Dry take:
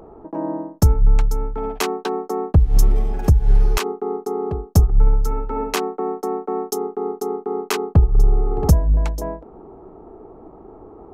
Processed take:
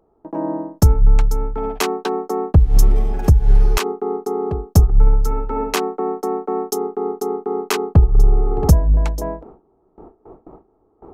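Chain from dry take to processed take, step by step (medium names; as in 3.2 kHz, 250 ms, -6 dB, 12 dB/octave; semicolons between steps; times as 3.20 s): gate with hold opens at -31 dBFS; trim +2 dB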